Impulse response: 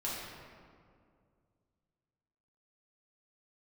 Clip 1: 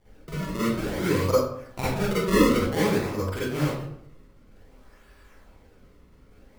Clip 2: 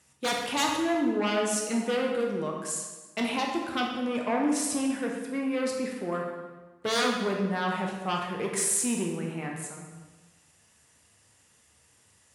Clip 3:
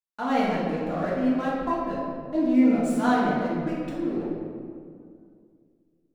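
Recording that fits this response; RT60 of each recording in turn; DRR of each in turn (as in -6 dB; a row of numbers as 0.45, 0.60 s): 3; 0.65, 1.3, 2.2 s; -11.0, 0.0, -7.5 dB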